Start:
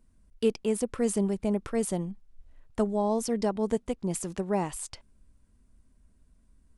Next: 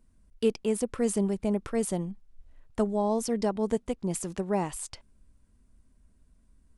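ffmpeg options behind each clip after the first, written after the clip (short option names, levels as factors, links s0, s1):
-af anull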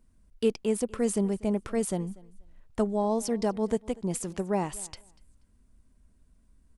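-af "aecho=1:1:241|482:0.0708|0.0142"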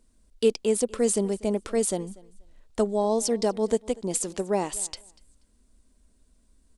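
-af "equalizer=f=125:t=o:w=1:g=-11,equalizer=f=250:t=o:w=1:g=3,equalizer=f=500:t=o:w=1:g=5,equalizer=f=4000:t=o:w=1:g=7,equalizer=f=8000:t=o:w=1:g=8"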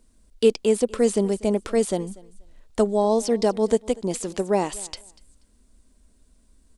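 -filter_complex "[0:a]acrossover=split=4300[s0][s1];[s1]acompressor=threshold=0.0178:ratio=4:attack=1:release=60[s2];[s0][s2]amix=inputs=2:normalize=0,volume=1.58"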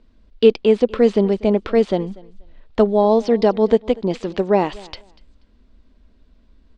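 -af "lowpass=f=4000:w=0.5412,lowpass=f=4000:w=1.3066,volume=1.88"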